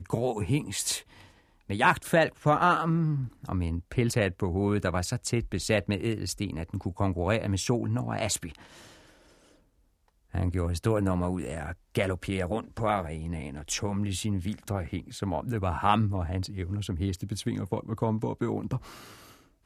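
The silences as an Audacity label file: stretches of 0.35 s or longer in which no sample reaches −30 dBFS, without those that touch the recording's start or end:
0.980000	1.700000	silence
8.470000	10.350000	silence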